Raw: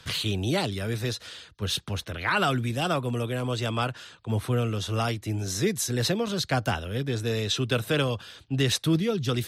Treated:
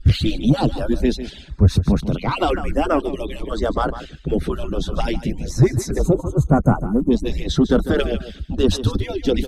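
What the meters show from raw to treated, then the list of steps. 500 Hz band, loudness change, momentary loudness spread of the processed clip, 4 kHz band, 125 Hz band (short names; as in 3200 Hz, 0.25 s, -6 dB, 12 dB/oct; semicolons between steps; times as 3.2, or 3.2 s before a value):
+8.0 dB, +7.0 dB, 9 LU, -1.0 dB, +7.5 dB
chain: median-filter separation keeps percussive; RIAA curve playback; spectral gain 5.99–7.11, 1500–6200 Hz -26 dB; low shelf 200 Hz +10 dB; in parallel at 0 dB: limiter -16.5 dBFS, peak gain reduction 10.5 dB; on the sum: soft clip -8 dBFS, distortion -19 dB; on a send: echo 0.15 s -12.5 dB; on the sum: stepped notch 2 Hz 990–3700 Hz; gain +3.5 dB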